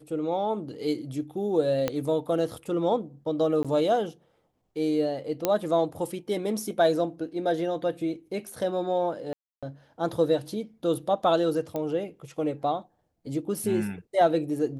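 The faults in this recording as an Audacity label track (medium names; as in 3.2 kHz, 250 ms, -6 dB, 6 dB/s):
1.880000	1.880000	pop -12 dBFS
3.630000	3.650000	dropout 16 ms
5.450000	5.450000	pop -8 dBFS
9.330000	9.630000	dropout 296 ms
11.760000	11.760000	pop -19 dBFS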